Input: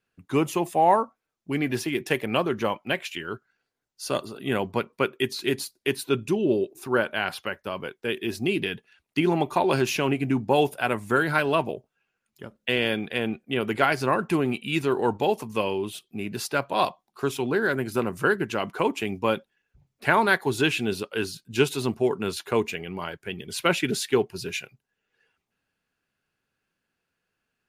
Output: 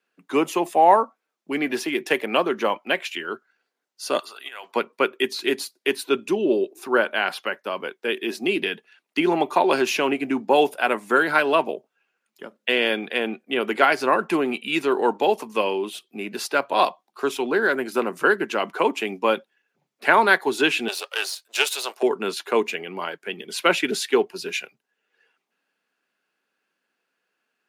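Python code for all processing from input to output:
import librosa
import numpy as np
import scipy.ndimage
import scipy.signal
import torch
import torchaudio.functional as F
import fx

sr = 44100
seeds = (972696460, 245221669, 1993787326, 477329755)

y = fx.chain(x, sr, fx.over_compress(threshold_db=-29.0, ratio=-0.5),
    fx.highpass(hz=1200.0, slope=12), at=(4.19, 4.76))
y = fx.chain(y, sr, fx.halfwave_gain(db=-7.0),
    fx.highpass(hz=520.0, slope=24),
    fx.high_shelf(hz=2700.0, db=10.0), at=(20.88, 22.03))
y = scipy.signal.sosfilt(scipy.signal.bessel(8, 330.0, 'highpass', norm='mag', fs=sr, output='sos'), y)
y = fx.high_shelf(y, sr, hz=6000.0, db=-6.0)
y = y * librosa.db_to_amplitude(5.0)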